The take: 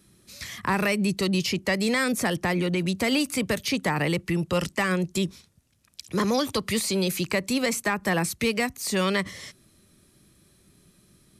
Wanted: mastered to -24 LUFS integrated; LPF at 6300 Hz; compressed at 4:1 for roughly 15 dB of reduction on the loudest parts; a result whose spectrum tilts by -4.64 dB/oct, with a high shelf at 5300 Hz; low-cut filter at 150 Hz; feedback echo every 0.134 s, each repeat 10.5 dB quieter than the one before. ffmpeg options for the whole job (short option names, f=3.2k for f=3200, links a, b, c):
-af "highpass=150,lowpass=6.3k,highshelf=f=5.3k:g=-6.5,acompressor=threshold=-40dB:ratio=4,aecho=1:1:134|268|402:0.299|0.0896|0.0269,volume=16.5dB"